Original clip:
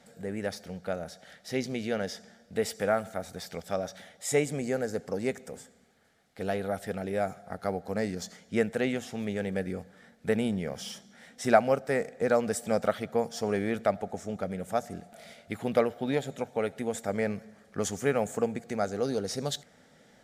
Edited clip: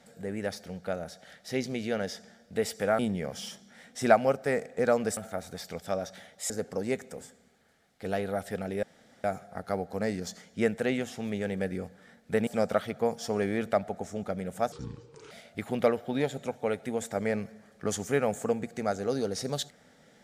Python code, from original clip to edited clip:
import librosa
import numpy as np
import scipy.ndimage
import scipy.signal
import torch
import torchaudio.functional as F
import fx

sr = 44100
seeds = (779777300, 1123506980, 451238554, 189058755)

y = fx.edit(x, sr, fx.cut(start_s=4.32, length_s=0.54),
    fx.insert_room_tone(at_s=7.19, length_s=0.41),
    fx.move(start_s=10.42, length_s=2.18, to_s=2.99),
    fx.speed_span(start_s=14.85, length_s=0.39, speed=0.66), tone=tone)